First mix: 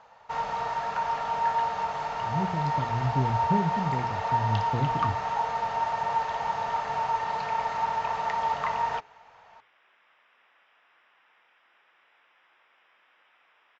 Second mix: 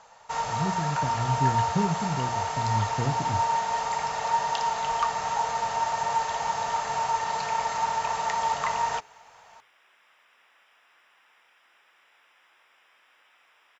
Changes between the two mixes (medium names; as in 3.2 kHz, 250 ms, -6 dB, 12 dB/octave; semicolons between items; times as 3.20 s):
speech: entry -1.75 s; master: remove distance through air 210 m